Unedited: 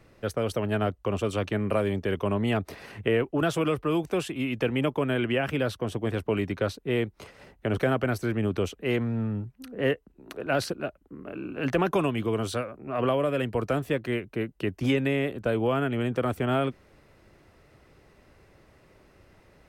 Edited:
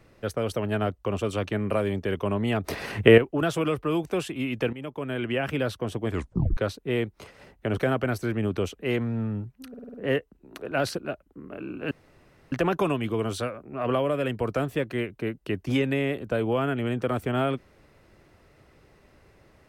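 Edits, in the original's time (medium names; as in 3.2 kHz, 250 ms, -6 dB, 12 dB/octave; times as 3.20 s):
2.64–3.18 s: gain +10 dB
4.73–5.47 s: fade in, from -15 dB
6.09 s: tape stop 0.48 s
9.69 s: stutter 0.05 s, 6 plays
11.66 s: insert room tone 0.61 s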